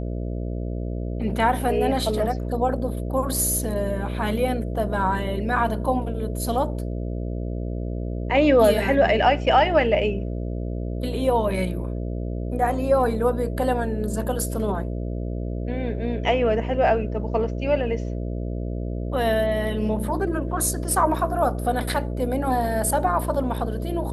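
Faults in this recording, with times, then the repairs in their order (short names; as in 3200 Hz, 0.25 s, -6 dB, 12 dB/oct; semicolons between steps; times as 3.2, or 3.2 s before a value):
buzz 60 Hz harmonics 11 -28 dBFS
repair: de-hum 60 Hz, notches 11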